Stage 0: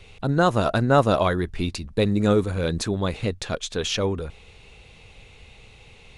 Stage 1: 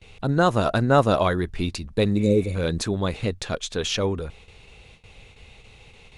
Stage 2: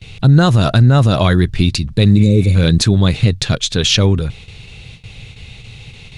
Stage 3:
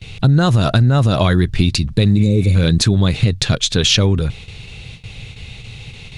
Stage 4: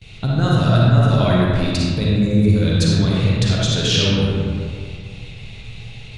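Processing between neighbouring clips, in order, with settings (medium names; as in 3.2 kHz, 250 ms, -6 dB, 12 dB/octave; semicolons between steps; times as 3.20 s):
gate with hold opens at -38 dBFS; spectral replace 2.21–2.52 s, 620–3700 Hz before
graphic EQ 125/500/1000/4000 Hz +11/-5/-5/+5 dB; loudness maximiser +11 dB; trim -1 dB
compression 4:1, threshold -11 dBFS, peak gain reduction 5.5 dB; trim +1.5 dB
reverberation RT60 2.1 s, pre-delay 15 ms, DRR -6 dB; trim -8.5 dB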